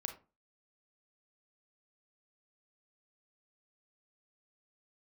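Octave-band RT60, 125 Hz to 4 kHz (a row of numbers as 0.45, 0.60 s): 0.35, 0.35, 0.30, 0.30, 0.25, 0.20 s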